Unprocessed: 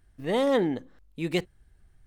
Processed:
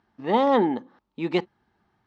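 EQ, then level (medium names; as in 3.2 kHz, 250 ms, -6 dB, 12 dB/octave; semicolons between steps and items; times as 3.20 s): cabinet simulation 180–5200 Hz, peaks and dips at 220 Hz +9 dB, 360 Hz +4 dB, 1.2 kHz +7 dB; peaking EQ 870 Hz +14 dB 0.39 oct; 0.0 dB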